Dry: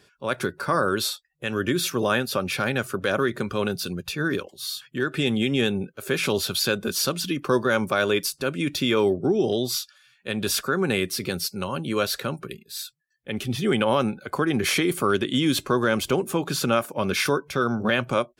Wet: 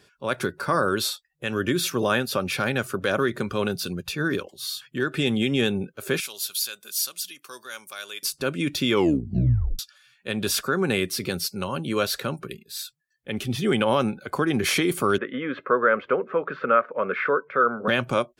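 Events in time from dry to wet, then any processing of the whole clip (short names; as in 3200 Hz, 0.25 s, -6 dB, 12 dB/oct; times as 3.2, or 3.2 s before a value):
6.2–8.23 differentiator
8.92 tape stop 0.87 s
15.18–17.88 speaker cabinet 320–2000 Hz, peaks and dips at 330 Hz -8 dB, 490 Hz +8 dB, 810 Hz -8 dB, 1300 Hz +8 dB, 1900 Hz +5 dB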